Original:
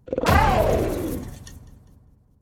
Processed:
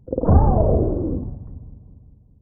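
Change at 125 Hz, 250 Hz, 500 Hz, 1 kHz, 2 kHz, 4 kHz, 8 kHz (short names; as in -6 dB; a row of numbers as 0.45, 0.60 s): +6.5 dB, +4.0 dB, +0.5 dB, -4.5 dB, under -20 dB, under -40 dB, under -40 dB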